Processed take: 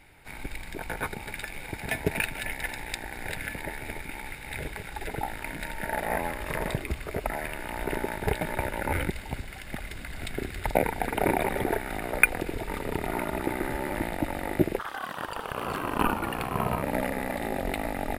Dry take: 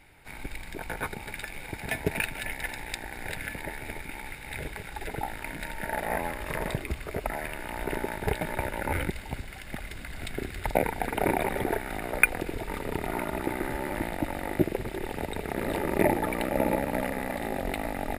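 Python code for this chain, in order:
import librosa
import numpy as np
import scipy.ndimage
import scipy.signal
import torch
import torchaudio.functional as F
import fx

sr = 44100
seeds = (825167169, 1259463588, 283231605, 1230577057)

y = fx.ring_mod(x, sr, carrier_hz=fx.line((14.78, 1300.0), (16.82, 380.0)), at=(14.78, 16.82), fade=0.02)
y = F.gain(torch.from_numpy(y), 1.0).numpy()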